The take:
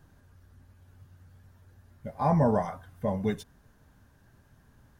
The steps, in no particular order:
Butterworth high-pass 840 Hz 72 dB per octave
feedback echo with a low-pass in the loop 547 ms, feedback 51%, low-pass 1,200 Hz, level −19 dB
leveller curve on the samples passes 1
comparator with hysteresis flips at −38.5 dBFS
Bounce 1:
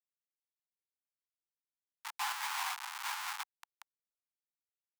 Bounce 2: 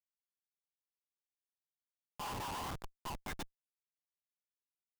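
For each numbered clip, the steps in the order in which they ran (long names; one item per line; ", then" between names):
feedback echo with a low-pass in the loop, then comparator with hysteresis, then leveller curve on the samples, then Butterworth high-pass
feedback echo with a low-pass in the loop, then leveller curve on the samples, then Butterworth high-pass, then comparator with hysteresis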